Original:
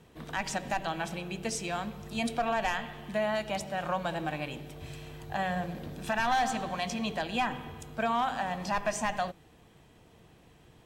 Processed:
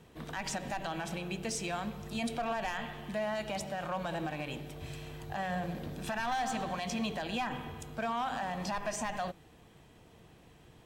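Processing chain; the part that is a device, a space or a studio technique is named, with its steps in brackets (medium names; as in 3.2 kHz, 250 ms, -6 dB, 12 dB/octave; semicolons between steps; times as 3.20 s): limiter into clipper (peak limiter -26 dBFS, peak gain reduction 6.5 dB; hard clipper -28 dBFS, distortion -25 dB)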